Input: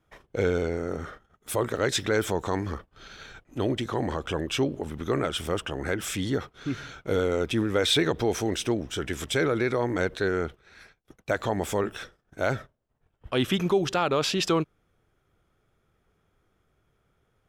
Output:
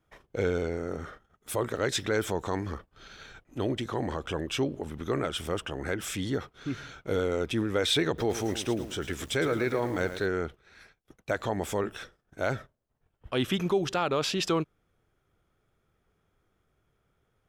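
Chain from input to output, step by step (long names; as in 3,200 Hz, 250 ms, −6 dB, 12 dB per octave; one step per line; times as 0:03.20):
0:08.07–0:10.26: feedback echo at a low word length 110 ms, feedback 35%, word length 7 bits, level −10 dB
level −3 dB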